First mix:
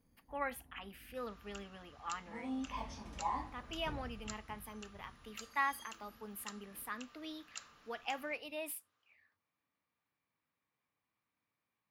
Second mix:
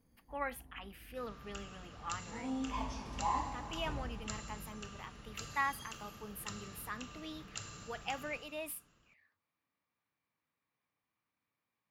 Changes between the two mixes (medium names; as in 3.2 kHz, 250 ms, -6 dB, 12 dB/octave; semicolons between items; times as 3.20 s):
second sound: remove high-pass 750 Hz 12 dB/octave; reverb: on, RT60 2.3 s